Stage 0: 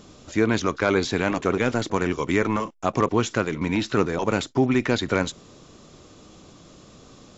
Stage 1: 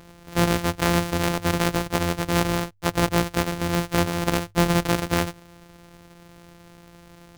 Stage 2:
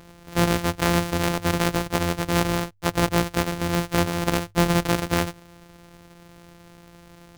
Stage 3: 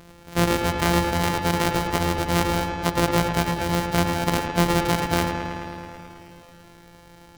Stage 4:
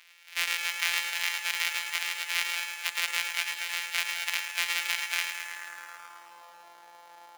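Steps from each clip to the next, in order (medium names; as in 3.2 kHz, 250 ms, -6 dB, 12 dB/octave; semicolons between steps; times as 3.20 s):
sorted samples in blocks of 256 samples; hum notches 50/100 Hz
no audible change
feedback echo behind a low-pass 108 ms, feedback 77%, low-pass 3.4 kHz, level -6 dB
sample-rate reducer 8.1 kHz, jitter 0%; high-pass sweep 2.3 kHz -> 810 Hz, 5.35–6.59 s; trim -4 dB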